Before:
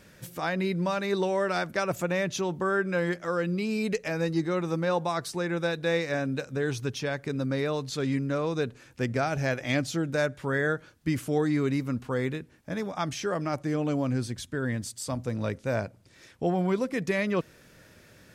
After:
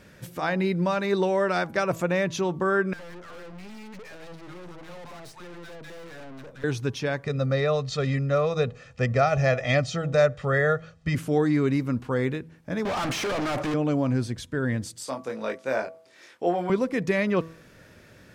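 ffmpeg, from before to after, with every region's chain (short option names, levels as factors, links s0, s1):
-filter_complex "[0:a]asettb=1/sr,asplit=3[s0][s1][s2];[s0]atrim=end=2.934[s3];[s1]atrim=start=2.93:end=6.64,asetpts=PTS-STARTPTS,afade=t=in:d=0.004:c=qsin,afade=t=out:st=3.706:d=0.004:c=qsin,acrossover=split=910[s4][s5];[s4]adelay=60[s6];[s6][s5]amix=inputs=2:normalize=0,atrim=end_sample=163611,aeval=exprs='(tanh(178*val(0)+0.65)-tanh(0.65))/178':c=same[s7];[s2]atrim=start=6.636[s8];[s3][s7]acrossfade=d=0.004:c1=hsin:c2=qsin[s9];[s9][s8]acrossfade=d=0.004:c1=qsin:c2=hsin,asettb=1/sr,asplit=3[s10][s11][s12];[s10]atrim=end=7.244[s13];[s11]atrim=start=7.24:end=11.15,asetpts=PTS-STARTPTS,afade=t=in:d=0.004:c=qsin,afade=t=out:st=3.906:d=0.004:c=qsin,lowpass=f=7700:w=0.5412,lowpass=f=7700:w=1.3066,aecho=1:1:1.6:0.8,atrim=end_sample=172431[s14];[s12]atrim=start=11.146[s15];[s13][s14]acrossfade=d=0.004:c1=hsin:c2=qsin[s16];[s16][s15]acrossfade=d=0.004:c1=qsin:c2=hsin,asettb=1/sr,asplit=3[s17][s18][s19];[s17]atrim=end=12.854[s20];[s18]atrim=start=12.85:end=13.74,asetpts=PTS-STARTPTS,afade=t=in:d=0.004:c=qsin,afade=t=out:st=0.886:d=0.004:c=qsin,asplit=2[s21][s22];[s22]highpass=f=720:p=1,volume=35.5,asoftclip=type=tanh:threshold=0.15[s23];[s21][s23]amix=inputs=2:normalize=0,lowpass=f=3000:p=1,volume=0.501,volume=29.9,asoftclip=hard,volume=0.0335[s24];[s19]atrim=start=13.736[s25];[s20][s24]acrossfade=d=0.004:c1=hsin:c2=qsin[s26];[s26][s25]acrossfade=d=0.004:c1=qsin:c2=hsin,asettb=1/sr,asplit=3[s27][s28][s29];[s27]atrim=end=15.054[s30];[s28]atrim=start=15.05:end=16.7,asetpts=PTS-STARTPTS,afade=t=in:d=0.004:c=qsin,afade=t=out:st=1.646:d=0.004:c=qsin,highpass=400,asplit=2[s31][s32];[s32]adelay=23,volume=0.596[s33];[s31][s33]amix=inputs=2:normalize=0,atrim=end_sample=72765[s34];[s29]atrim=start=16.696[s35];[s30][s34]acrossfade=d=0.004:c1=hsin:c2=qsin[s36];[s36][s35]acrossfade=d=0.004:c1=qsin:c2=hsin,highshelf=f=4400:g=-7,bandreject=f=162.9:t=h:w=4,bandreject=f=325.8:t=h:w=4,bandreject=f=488.7:t=h:w=4,bandreject=f=651.6:t=h:w=4,bandreject=f=814.5:t=h:w=4,bandreject=f=977.4:t=h:w=4,bandreject=f=1140.3:t=h:w=4,volume=1.5"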